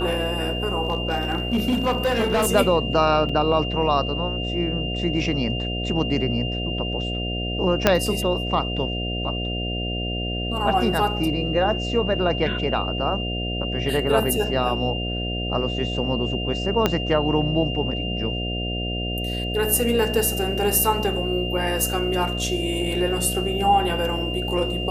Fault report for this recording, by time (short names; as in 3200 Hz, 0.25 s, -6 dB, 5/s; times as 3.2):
buzz 60 Hz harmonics 12 -28 dBFS
tone 2800 Hz -29 dBFS
0.85–2.48 clipped -16.5 dBFS
3.29 gap 4.1 ms
7.87 pop -1 dBFS
16.86 pop -5 dBFS